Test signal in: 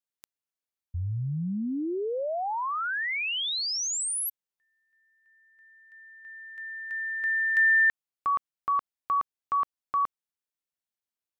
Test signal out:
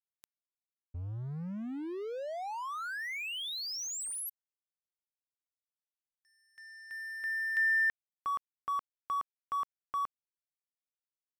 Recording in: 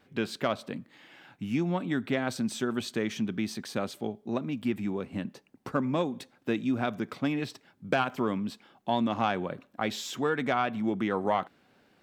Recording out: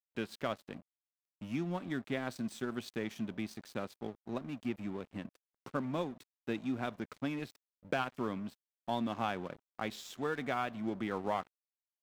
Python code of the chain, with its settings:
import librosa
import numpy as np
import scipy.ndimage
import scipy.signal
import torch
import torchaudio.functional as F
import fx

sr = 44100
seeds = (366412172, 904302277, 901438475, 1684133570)

y = np.sign(x) * np.maximum(np.abs(x) - 10.0 ** (-43.0 / 20.0), 0.0)
y = y * 10.0 ** (-6.5 / 20.0)